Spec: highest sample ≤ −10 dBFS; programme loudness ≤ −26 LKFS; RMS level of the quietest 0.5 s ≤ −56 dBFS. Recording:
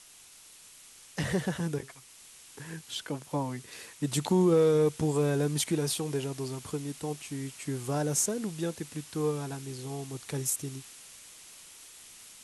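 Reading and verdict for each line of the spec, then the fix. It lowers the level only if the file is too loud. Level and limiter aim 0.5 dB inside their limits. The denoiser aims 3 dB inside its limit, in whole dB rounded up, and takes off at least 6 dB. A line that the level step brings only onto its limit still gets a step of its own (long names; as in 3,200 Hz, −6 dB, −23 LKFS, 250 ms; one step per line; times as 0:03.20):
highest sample −12.5 dBFS: in spec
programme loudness −31.0 LKFS: in spec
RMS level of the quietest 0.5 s −54 dBFS: out of spec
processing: broadband denoise 6 dB, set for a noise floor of −54 dBFS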